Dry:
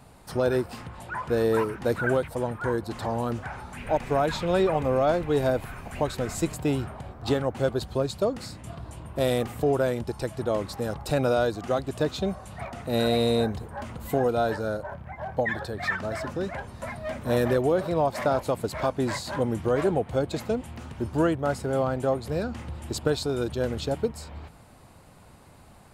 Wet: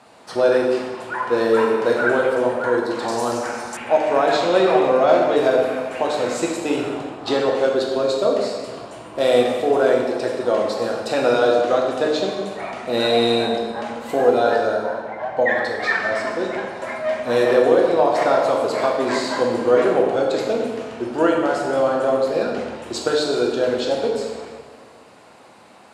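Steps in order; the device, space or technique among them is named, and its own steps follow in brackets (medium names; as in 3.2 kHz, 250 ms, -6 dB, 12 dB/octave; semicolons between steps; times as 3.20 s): supermarket ceiling speaker (band-pass 340–6600 Hz; reverberation RT60 1.5 s, pre-delay 6 ms, DRR -1.5 dB); 3.08–3.77 s: high-order bell 7.9 kHz +15.5 dB; trim +5.5 dB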